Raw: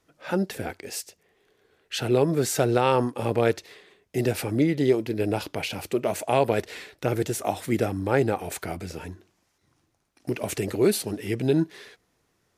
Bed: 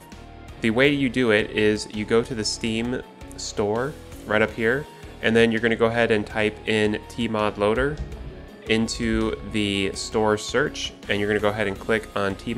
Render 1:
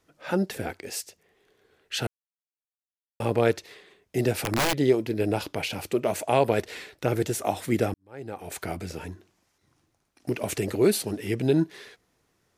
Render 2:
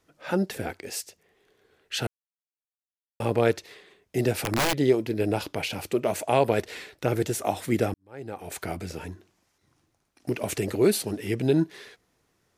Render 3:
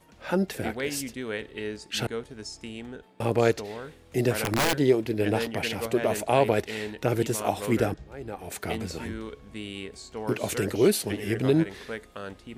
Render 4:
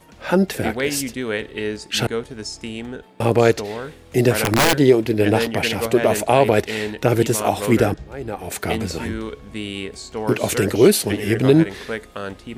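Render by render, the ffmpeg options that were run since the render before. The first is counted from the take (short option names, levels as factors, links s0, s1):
-filter_complex "[0:a]asettb=1/sr,asplit=3[s0][s1][s2];[s0]atrim=end=4.324[s3];[s1]atrim=start=4.32:end=4.74,asetpts=PTS-STARTPTS,afade=t=in:d=0.004:c=qsin,afade=t=out:st=0.416:d=0.004:c=qsin,aeval=exprs='(mod(8.41*val(0)+1,2)-1)/8.41':c=same[s4];[s2]atrim=start=4.736[s5];[s3][s4]acrossfade=d=0.004:c1=hsin:c2=qsin[s6];[s6][s5]acrossfade=d=0.004:c1=qsin:c2=hsin,asplit=4[s7][s8][s9][s10];[s7]atrim=end=2.07,asetpts=PTS-STARTPTS,afade=t=out:st=2.066:d=0.004:c=hsin[s11];[s8]atrim=start=2.07:end=3.2,asetpts=PTS-STARTPTS,volume=0[s12];[s9]atrim=start=3.2:end=7.94,asetpts=PTS-STARTPTS,afade=t=in:d=0.004:c=hsin,afade=t=out:st=4.736:d=0.004:c=hsin[s13];[s10]atrim=start=7.94,asetpts=PTS-STARTPTS,afade=t=in:d=0.71:c=qua[s14];[s11][s12][s13][s14]concat=n=4:v=0:a=1"
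-af anull
-filter_complex "[1:a]volume=0.2[s0];[0:a][s0]amix=inputs=2:normalize=0"
-af "volume=2.66,alimiter=limit=0.794:level=0:latency=1"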